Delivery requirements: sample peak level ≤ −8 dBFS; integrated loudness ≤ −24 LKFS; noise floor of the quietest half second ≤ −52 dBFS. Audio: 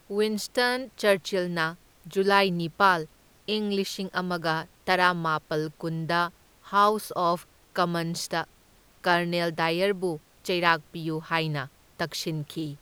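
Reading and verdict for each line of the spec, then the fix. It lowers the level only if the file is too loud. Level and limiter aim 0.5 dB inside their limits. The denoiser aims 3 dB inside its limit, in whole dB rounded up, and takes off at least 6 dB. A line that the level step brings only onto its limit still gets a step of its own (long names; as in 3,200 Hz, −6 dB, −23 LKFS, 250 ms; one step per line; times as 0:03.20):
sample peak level −5.5 dBFS: out of spec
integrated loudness −26.5 LKFS: in spec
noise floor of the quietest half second −58 dBFS: in spec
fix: brickwall limiter −8.5 dBFS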